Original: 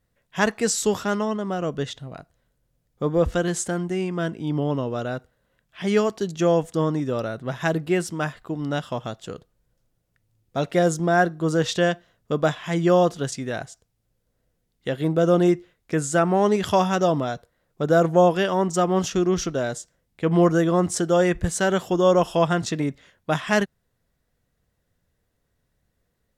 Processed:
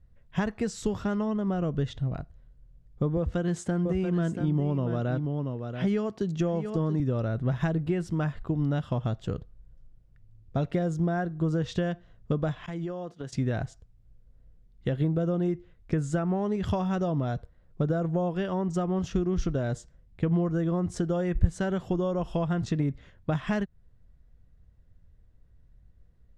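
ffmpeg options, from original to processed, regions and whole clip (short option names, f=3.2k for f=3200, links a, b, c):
-filter_complex "[0:a]asettb=1/sr,asplit=3[a][b][c];[a]atrim=end=3.174[d];[b]atrim=start=3.17:end=7,asetpts=PTS-STARTPTS,afade=t=in:d=0.004:c=qsin,afade=t=out:st=3.826:d=0.004:c=qsin,highpass=110,aecho=1:1:683:0.316,atrim=end_sample=168903[e];[c]atrim=start=6.996[f];[d][e]acrossfade=d=0.004:c1=hsin:c2=qsin[g];[g][f]acrossfade=d=0.004:c1=qsin:c2=hsin,asettb=1/sr,asplit=3[h][i][j];[h]atrim=end=12.664[k];[i]atrim=start=12.66:end=13.33,asetpts=PTS-STARTPTS,afade=t=in:d=0.004:c=qsin,afade=t=out:st=0.666:d=0.004:c=qsin,agate=range=-33dB:threshold=-29dB:ratio=3:release=100:detection=peak,highpass=210,acompressor=threshold=-36dB:ratio=4:attack=3.2:release=140:knee=1:detection=peak[l];[j]atrim=start=13.326[m];[k][l]acrossfade=d=0.004:c1=hsin:c2=qsin[n];[n][m]acrossfade=d=0.004:c1=qsin:c2=hsin,lowshelf=f=120:g=7.5,acompressor=threshold=-26dB:ratio=6,aemphasis=mode=reproduction:type=bsi,volume=-2.5dB"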